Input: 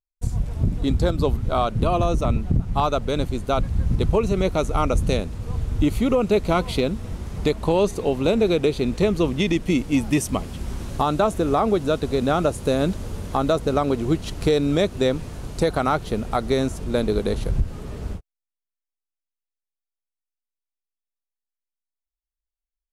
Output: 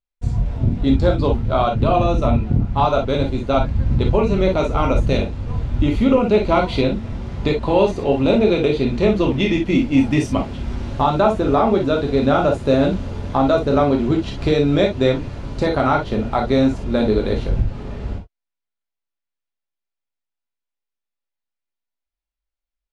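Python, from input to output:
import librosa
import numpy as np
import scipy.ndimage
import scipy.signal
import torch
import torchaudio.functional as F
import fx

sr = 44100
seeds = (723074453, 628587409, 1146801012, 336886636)

y = scipy.signal.sosfilt(scipy.signal.butter(2, 3900.0, 'lowpass', fs=sr, output='sos'), x)
y = fx.rev_gated(y, sr, seeds[0], gate_ms=80, shape='flat', drr_db=0.0)
y = y * 10.0 ** (1.5 / 20.0)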